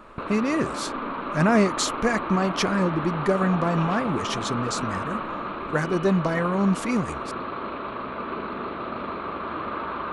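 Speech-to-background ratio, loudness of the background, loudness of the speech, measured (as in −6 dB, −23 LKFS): 6.0 dB, −31.0 LKFS, −25.0 LKFS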